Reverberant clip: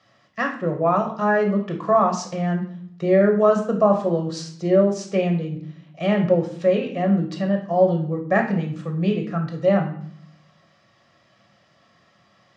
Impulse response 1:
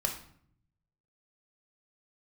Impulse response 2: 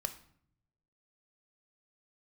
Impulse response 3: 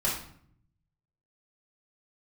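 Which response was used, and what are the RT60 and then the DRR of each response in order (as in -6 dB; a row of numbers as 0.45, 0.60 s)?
1; 0.60, 0.60, 0.60 s; 2.0, 8.0, -7.0 dB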